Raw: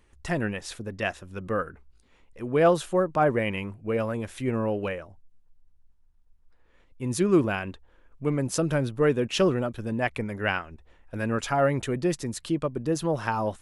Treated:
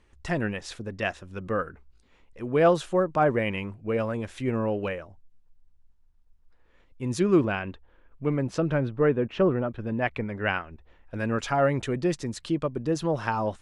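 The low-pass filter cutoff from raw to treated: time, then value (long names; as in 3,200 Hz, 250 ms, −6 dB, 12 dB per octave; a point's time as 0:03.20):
0:07.11 7,300 Hz
0:07.64 3,800 Hz
0:08.38 3,800 Hz
0:09.42 1,500 Hz
0:10.01 3,500 Hz
0:10.63 3,500 Hz
0:11.32 6,800 Hz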